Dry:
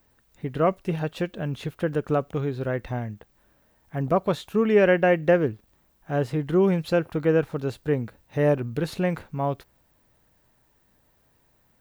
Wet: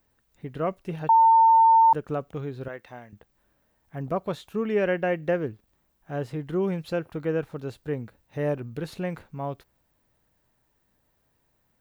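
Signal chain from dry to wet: 1.09–1.93 bleep 903 Hz -7 dBFS; 2.68–3.13 HPF 670 Hz 6 dB/oct; gain -6 dB

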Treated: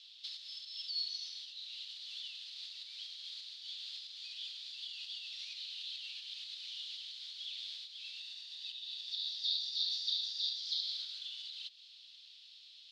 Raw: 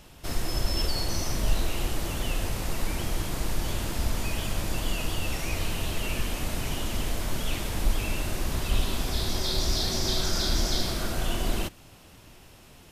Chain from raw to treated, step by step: 8.19–10.58 comb 1.1 ms, depth 41%; compressor 5:1, threshold -33 dBFS, peak gain reduction 16 dB; Butterworth band-pass 3900 Hz, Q 3.2; gain +8.5 dB

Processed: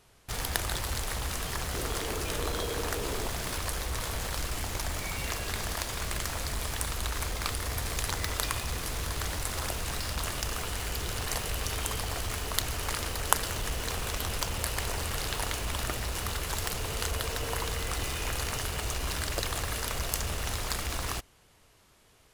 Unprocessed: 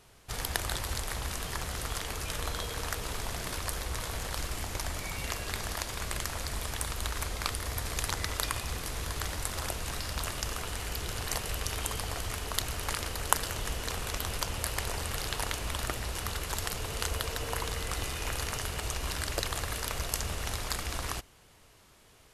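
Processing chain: 1.74–3.28 bell 370 Hz +8.5 dB 1.2 oct; in parallel at -10 dB: companded quantiser 2-bit; on the sum: gain -2.5 dB

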